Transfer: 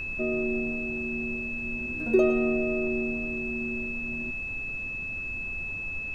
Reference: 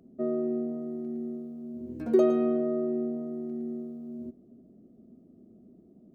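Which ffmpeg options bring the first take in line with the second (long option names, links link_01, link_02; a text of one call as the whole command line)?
ffmpeg -i in.wav -af "bandreject=frequency=2600:width=30,afftdn=noise_reduction=22:noise_floor=-34" out.wav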